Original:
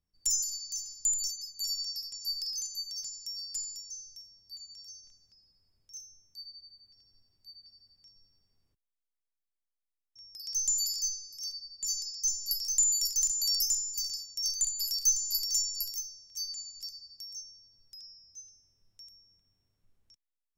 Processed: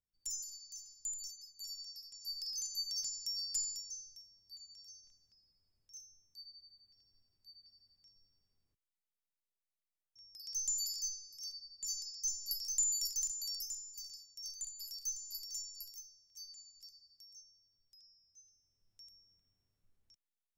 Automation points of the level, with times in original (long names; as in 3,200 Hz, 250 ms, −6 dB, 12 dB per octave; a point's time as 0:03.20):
0:02.02 −12.5 dB
0:02.90 0 dB
0:03.69 0 dB
0:04.23 −7 dB
0:13.10 −7 dB
0:13.64 −14 dB
0:18.38 −14 dB
0:19.06 −5.5 dB